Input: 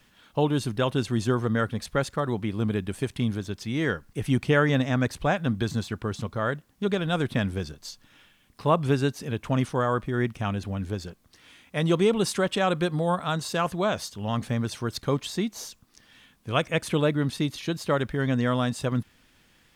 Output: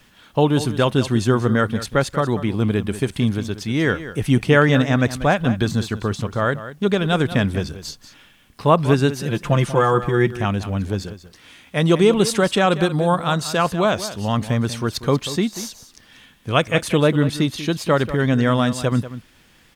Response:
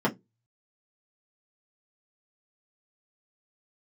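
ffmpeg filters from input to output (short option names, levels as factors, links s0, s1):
-filter_complex "[0:a]asettb=1/sr,asplit=3[s0][s1][s2];[s0]atrim=end=9.184[s3];[s1]atrim=start=9.18:end=10.3,asetpts=PTS-STARTPTS,afade=t=in:d=0.004:c=qsin,afade=t=out:st=1.116:d=0.004:c=qsin,aecho=1:1:5.8:0.66,atrim=end_sample=49392[s4];[s2]atrim=start=10.296[s5];[s3][s4]acrossfade=d=0.004:c1=hsin:c2=qsin[s6];[s6][s5]acrossfade=d=0.004:c1=qsin:c2=hsin,aecho=1:1:189:0.211,volume=2.24"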